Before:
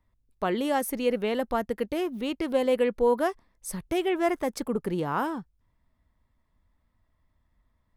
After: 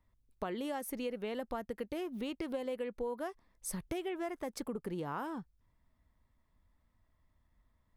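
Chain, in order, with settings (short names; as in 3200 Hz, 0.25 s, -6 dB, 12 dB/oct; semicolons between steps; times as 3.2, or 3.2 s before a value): compressor, threshold -33 dBFS, peak gain reduction 14 dB; gain -2.5 dB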